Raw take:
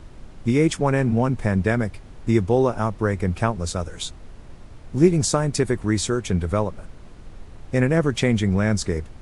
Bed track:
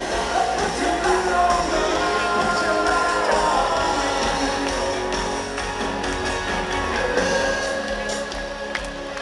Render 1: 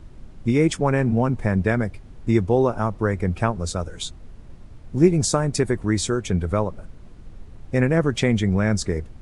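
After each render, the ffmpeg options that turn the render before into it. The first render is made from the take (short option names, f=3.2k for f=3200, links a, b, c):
-af "afftdn=nr=6:nf=-42"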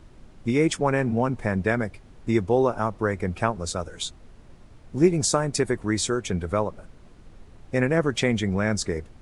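-af "lowshelf=f=220:g=-8"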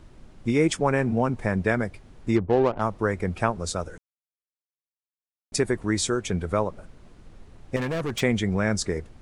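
-filter_complex "[0:a]asplit=3[a][b][c];[a]afade=t=out:st=2.35:d=0.02[d];[b]adynamicsmooth=sensitivity=1.5:basefreq=500,afade=t=in:st=2.35:d=0.02,afade=t=out:st=2.8:d=0.02[e];[c]afade=t=in:st=2.8:d=0.02[f];[d][e][f]amix=inputs=3:normalize=0,asettb=1/sr,asplit=3[g][h][i];[g]atrim=end=7.764[j];[h]atrim=start=7.76:end=8.21,asetpts=PTS-STARTPTS,afade=t=in:d=0.004:c=qsin,afade=t=out:st=0.446:d=0.004:c=qsin,volume=25dB,asoftclip=hard,volume=-25dB[k];[i]atrim=start=8.206[l];[j][k]acrossfade=d=0.004:c1=hsin:c2=qsin[m];[m][l]acrossfade=d=0.004:c1=qsin:c2=hsin,asplit=3[n][o][p];[n]atrim=end=3.98,asetpts=PTS-STARTPTS,afade=t=out:st=3.976:d=0.004:c=hsin[q];[o]atrim=start=3.98:end=5.52,asetpts=PTS-STARTPTS,volume=0[r];[p]atrim=start=5.52,asetpts=PTS-STARTPTS,afade=t=in:d=0.004:c=hsin[s];[q][r][s]concat=n=3:v=0:a=1"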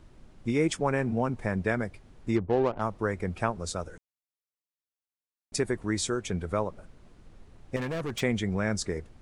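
-af "volume=-4.5dB"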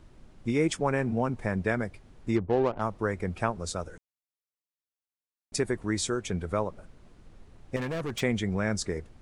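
-af anull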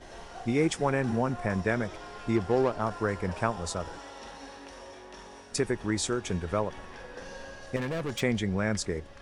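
-filter_complex "[1:a]volume=-23dB[a];[0:a][a]amix=inputs=2:normalize=0"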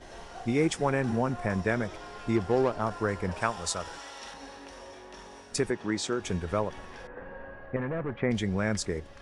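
-filter_complex "[0:a]asettb=1/sr,asplit=3[a][b][c];[a]atrim=end=3.414[d];[b]atrim=start=3.41:end=4.34,asetpts=PTS-STARTPTS,afade=t=in:d=0.004:c=qsin,afade=t=out:st=0.926:d=0.004:c=qsin,tiltshelf=f=890:g=-5.5[e];[c]atrim=start=4.336[f];[d][e]acrossfade=d=0.004:c1=hsin:c2=qsin[g];[g][f]acrossfade=d=0.004:c1=qsin:c2=hsin,asettb=1/sr,asplit=3[h][i][j];[h]atrim=end=5.704[k];[i]atrim=start=5.7:end=6.2,asetpts=PTS-STARTPTS,afade=t=in:d=0.004:c=qsin,afade=t=out:st=0.496:d=0.004:c=qsin,highpass=150,lowpass=6.4k[l];[j]atrim=start=6.196[m];[k][l]acrossfade=d=0.004:c1=hsin:c2=qsin[n];[n][m]acrossfade=d=0.004:c1=qsin:c2=hsin,asettb=1/sr,asplit=3[o][p][q];[o]atrim=end=7.074[r];[p]atrim=start=7.07:end=8.31,asetpts=PTS-STARTPTS,afade=t=in:d=0.004:c=qsin,afade=t=out:st=1.236:d=0.004:c=qsin,lowpass=f=2k:w=0.5412,lowpass=f=2k:w=1.3066[s];[q]atrim=start=8.306[t];[r][s]acrossfade=d=0.004:c1=hsin:c2=qsin[u];[u][t]acrossfade=d=0.004:c1=qsin:c2=hsin"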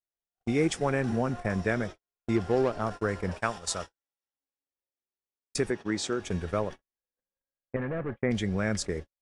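-af "equalizer=f=950:t=o:w=0.35:g=-5,agate=range=-58dB:threshold=-35dB:ratio=16:detection=peak"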